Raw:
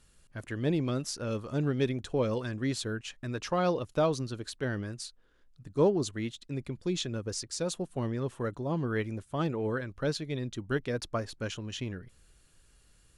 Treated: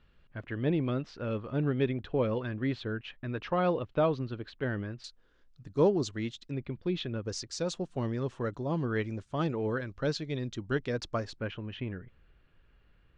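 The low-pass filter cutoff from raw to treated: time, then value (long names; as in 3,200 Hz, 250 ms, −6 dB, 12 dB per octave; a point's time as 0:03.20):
low-pass filter 24 dB per octave
3,300 Hz
from 0:05.04 6,500 Hz
from 0:06.51 3,500 Hz
from 0:07.25 6,500 Hz
from 0:11.40 2,800 Hz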